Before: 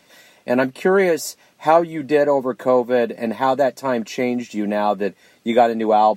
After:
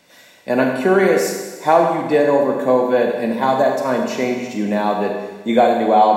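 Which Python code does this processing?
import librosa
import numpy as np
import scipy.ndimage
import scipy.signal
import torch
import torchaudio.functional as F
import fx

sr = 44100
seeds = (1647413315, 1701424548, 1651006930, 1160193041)

y = fx.rev_schroeder(x, sr, rt60_s=1.3, comb_ms=31, drr_db=1.5)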